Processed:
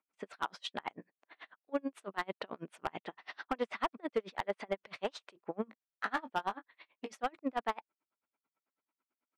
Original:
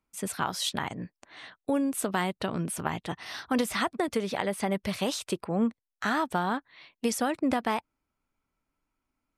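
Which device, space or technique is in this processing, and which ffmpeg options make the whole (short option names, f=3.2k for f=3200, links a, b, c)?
helicopter radio: -filter_complex "[0:a]highpass=360,lowpass=2.6k,aeval=exprs='val(0)*pow(10,-36*(0.5-0.5*cos(2*PI*9.1*n/s))/20)':c=same,asoftclip=type=hard:threshold=-25dB,asettb=1/sr,asplit=3[a][b][c];[a]atrim=end=5.654[d];[b]atrim=start=5.65:end=7.13,asetpts=PTS-STARTPTS,afade=t=in:d=0.004:c=qsin,afade=t=out:st=1.476:d=0.004:c=qsin,asplit=2[e][f];[f]adelay=19,volume=-10dB[g];[e][g]amix=inputs=2:normalize=0,atrim=end_sample=65268[h];[c]atrim=start=7.126[i];[d][h]acrossfade=d=0.004:c1=hsin:c2=qsin[j];[j][i]acrossfade=d=0.004:c1=qsin:c2=hsin,volume=1dB"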